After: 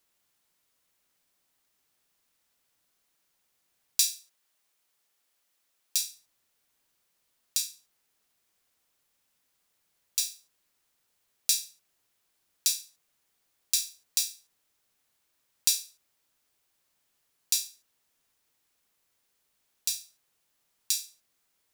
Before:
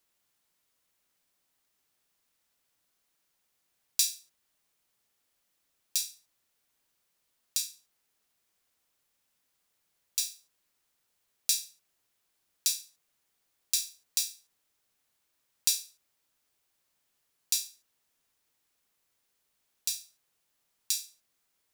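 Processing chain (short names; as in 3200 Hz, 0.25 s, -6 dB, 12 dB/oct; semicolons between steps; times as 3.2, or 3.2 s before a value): 4.1–6.1 low shelf 250 Hz -11.5 dB; gain +2 dB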